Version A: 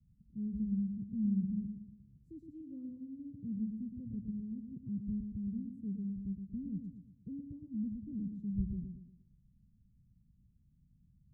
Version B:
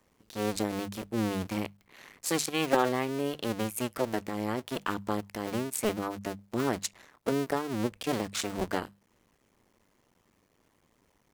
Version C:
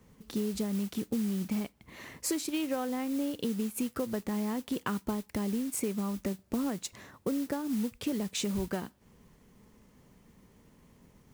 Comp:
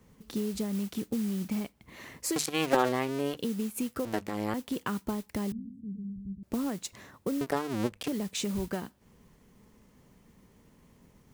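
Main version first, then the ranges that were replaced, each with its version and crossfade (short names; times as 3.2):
C
2.36–3.37 from B
4.05–4.54 from B
5.52–6.43 from A
7.41–8.08 from B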